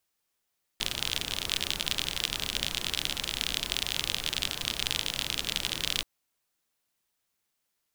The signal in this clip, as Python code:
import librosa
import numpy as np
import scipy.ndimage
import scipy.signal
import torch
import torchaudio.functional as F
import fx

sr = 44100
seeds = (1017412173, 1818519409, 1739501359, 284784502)

y = fx.rain(sr, seeds[0], length_s=5.23, drops_per_s=43.0, hz=3300.0, bed_db=-7.0)